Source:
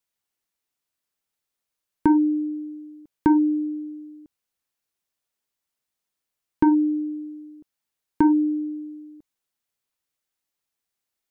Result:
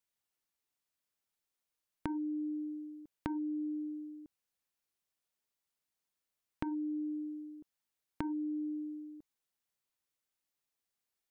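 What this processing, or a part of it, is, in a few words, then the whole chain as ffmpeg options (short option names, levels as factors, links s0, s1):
serial compression, peaks first: -af "acompressor=threshold=0.0501:ratio=10,acompressor=threshold=0.0251:ratio=2,volume=0.562"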